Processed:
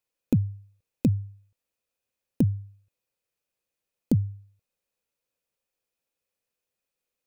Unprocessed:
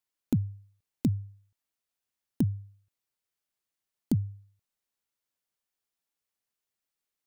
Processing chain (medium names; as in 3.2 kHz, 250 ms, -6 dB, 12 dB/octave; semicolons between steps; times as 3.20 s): bass shelf 330 Hz +5 dB; small resonant body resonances 510/2500 Hz, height 12 dB, ringing for 30 ms